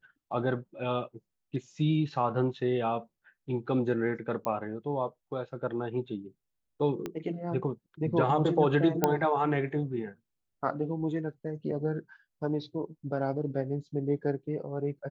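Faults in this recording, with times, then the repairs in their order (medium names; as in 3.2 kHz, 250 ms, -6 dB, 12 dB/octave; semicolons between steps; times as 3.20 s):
4.45 s: pop -19 dBFS
7.06 s: pop -21 dBFS
9.04 s: pop -9 dBFS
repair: de-click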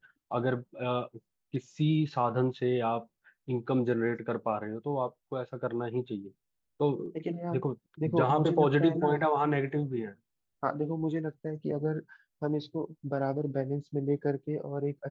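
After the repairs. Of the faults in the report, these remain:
7.06 s: pop
9.04 s: pop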